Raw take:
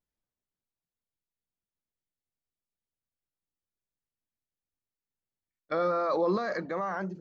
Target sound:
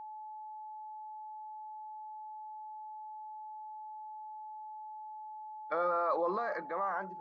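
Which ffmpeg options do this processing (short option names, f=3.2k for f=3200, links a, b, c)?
-af "bandpass=f=1k:t=q:w=1.1:csg=0,aeval=exprs='val(0)+0.00708*sin(2*PI*860*n/s)':c=same"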